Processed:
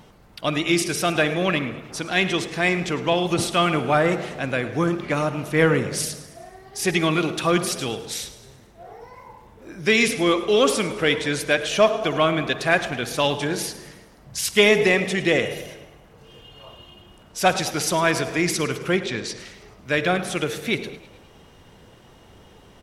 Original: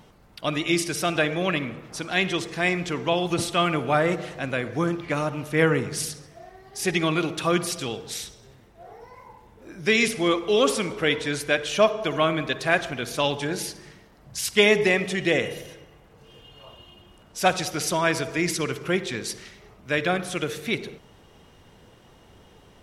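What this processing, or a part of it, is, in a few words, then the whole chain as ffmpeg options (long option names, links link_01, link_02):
parallel distortion: -filter_complex "[0:a]asettb=1/sr,asplit=3[link_01][link_02][link_03];[link_01]atrim=end=18.964[link_04];[link_02]atrim=start=18.96:end=19.4,asetpts=PTS-STARTPTS,afade=type=in:duration=0.004:curve=qsin,afade=type=out:start_time=0.436:duration=0.004:curve=qsin,lowpass=6100[link_05];[link_03]atrim=start=19.396[link_06];[link_04][link_05]acrossfade=duration=0.004:curve1=hsin:curve2=qsin[link_07];[link_07][link_06]acrossfade=duration=0.004:curve1=qsin:curve2=hsin,asplit=6[link_08][link_09][link_10][link_11][link_12][link_13];[link_09]adelay=106,afreqshift=33,volume=-17dB[link_14];[link_10]adelay=212,afreqshift=66,volume=-22.5dB[link_15];[link_11]adelay=318,afreqshift=99,volume=-28dB[link_16];[link_12]adelay=424,afreqshift=132,volume=-33.5dB[link_17];[link_13]adelay=530,afreqshift=165,volume=-39.1dB[link_18];[link_08][link_14][link_15][link_16][link_17][link_18]amix=inputs=6:normalize=0,asplit=2[link_19][link_20];[link_20]asoftclip=type=hard:threshold=-19dB,volume=-12dB[link_21];[link_19][link_21]amix=inputs=2:normalize=0,volume=1dB"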